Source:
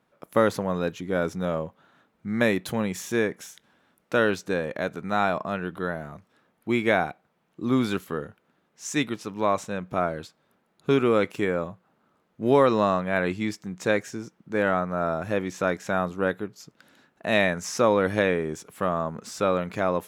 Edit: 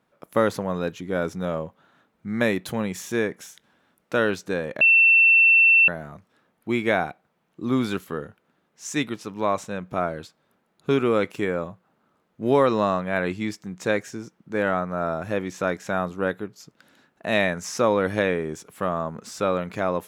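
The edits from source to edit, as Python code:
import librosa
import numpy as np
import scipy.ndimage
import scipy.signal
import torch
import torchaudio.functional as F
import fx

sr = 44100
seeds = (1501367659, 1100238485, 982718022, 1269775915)

y = fx.edit(x, sr, fx.bleep(start_s=4.81, length_s=1.07, hz=2690.0, db=-12.0), tone=tone)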